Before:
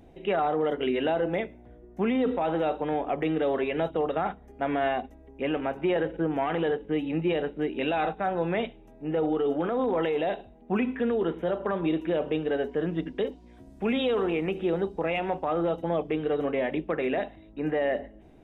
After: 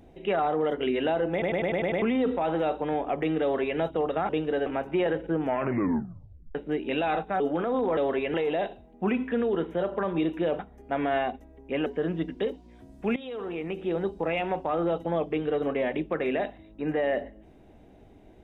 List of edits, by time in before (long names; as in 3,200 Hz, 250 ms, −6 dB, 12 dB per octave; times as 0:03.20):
0:01.32: stutter in place 0.10 s, 7 plays
0:03.42–0:03.79: duplicate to 0:10.02
0:04.29–0:05.56: swap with 0:12.27–0:12.64
0:06.34: tape stop 1.11 s
0:08.30–0:09.45: remove
0:13.94–0:14.93: fade in linear, from −16.5 dB